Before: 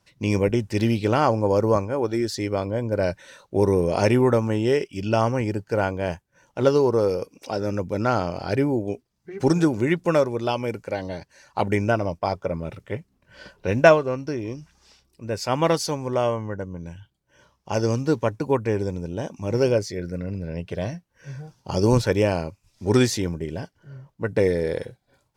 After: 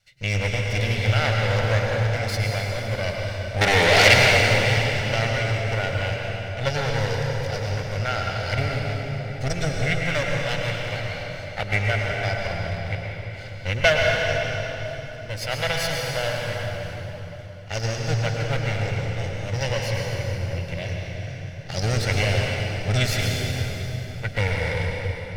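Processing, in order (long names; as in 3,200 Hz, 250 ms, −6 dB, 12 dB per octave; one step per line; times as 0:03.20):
lower of the sound and its delayed copy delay 1.4 ms
0:03.61–0:04.14: mid-hump overdrive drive 29 dB, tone 6,600 Hz, clips at −6 dBFS
octave-band graphic EQ 125/250/1,000/2,000/4,000 Hz +4/−10/−10/+9/+6 dB
convolution reverb RT60 3.8 s, pre-delay 99 ms, DRR −1 dB
level −3 dB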